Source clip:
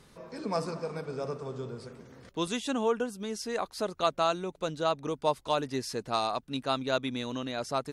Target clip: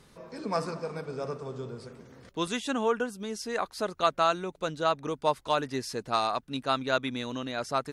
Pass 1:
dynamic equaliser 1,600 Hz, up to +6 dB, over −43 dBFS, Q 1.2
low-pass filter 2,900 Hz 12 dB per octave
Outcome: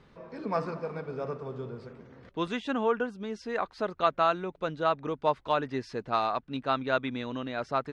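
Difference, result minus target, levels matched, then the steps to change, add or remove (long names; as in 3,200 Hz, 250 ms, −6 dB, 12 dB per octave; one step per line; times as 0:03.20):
4,000 Hz band −5.0 dB
remove: low-pass filter 2,900 Hz 12 dB per octave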